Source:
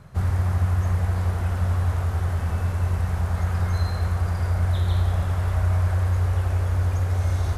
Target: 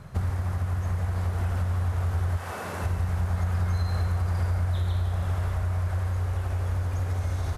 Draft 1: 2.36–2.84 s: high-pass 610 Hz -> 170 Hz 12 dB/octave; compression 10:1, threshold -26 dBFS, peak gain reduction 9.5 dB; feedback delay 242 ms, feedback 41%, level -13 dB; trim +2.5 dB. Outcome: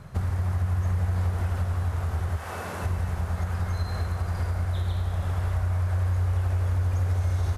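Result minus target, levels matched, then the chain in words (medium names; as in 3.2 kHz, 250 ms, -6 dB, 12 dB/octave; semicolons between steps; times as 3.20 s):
echo 96 ms late
2.36–2.84 s: high-pass 610 Hz -> 170 Hz 12 dB/octave; compression 10:1, threshold -26 dBFS, peak gain reduction 9.5 dB; feedback delay 146 ms, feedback 41%, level -13 dB; trim +2.5 dB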